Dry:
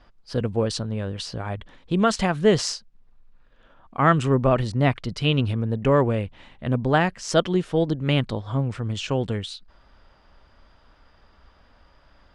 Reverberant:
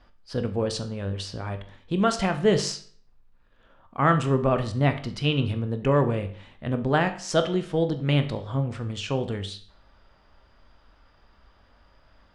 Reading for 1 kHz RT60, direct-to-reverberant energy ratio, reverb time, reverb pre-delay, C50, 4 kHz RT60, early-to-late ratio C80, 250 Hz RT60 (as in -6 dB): 0.50 s, 7.5 dB, 0.50 s, 20 ms, 12.0 dB, 0.45 s, 16.0 dB, 0.50 s